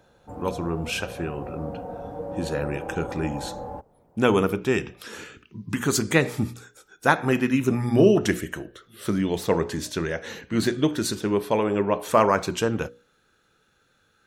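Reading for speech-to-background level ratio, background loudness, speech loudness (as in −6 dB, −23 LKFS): 11.5 dB, −36.0 LKFS, −24.5 LKFS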